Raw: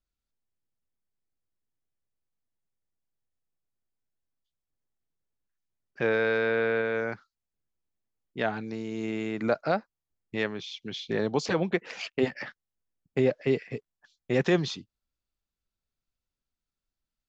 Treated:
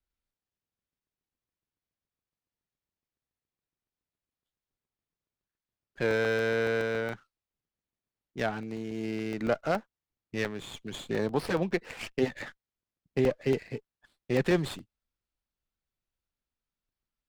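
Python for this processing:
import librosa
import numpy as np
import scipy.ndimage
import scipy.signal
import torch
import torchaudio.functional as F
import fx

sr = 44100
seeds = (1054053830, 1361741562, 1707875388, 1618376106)

y = fx.buffer_crackle(x, sr, first_s=0.79, period_s=0.14, block=64, kind='zero')
y = fx.running_max(y, sr, window=5)
y = y * librosa.db_to_amplitude(-1.5)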